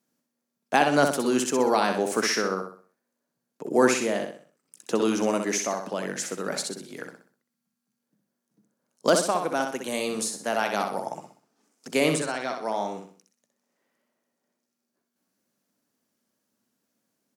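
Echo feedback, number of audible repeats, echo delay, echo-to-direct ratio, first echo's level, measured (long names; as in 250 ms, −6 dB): 38%, 4, 63 ms, −5.5 dB, −6.0 dB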